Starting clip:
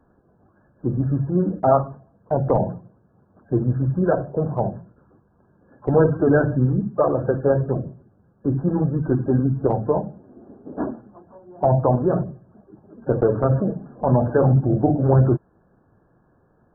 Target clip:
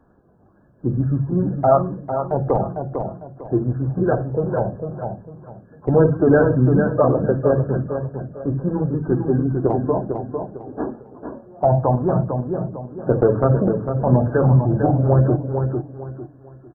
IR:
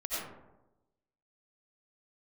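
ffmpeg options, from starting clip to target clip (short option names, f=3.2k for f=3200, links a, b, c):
-filter_complex "[0:a]asplit=2[a][b];[b]aecho=0:1:451|902|1353|1804:0.501|0.15|0.0451|0.0135[c];[a][c]amix=inputs=2:normalize=0,aphaser=in_gain=1:out_gain=1:delay=2.9:decay=0.26:speed=0.15:type=sinusoidal"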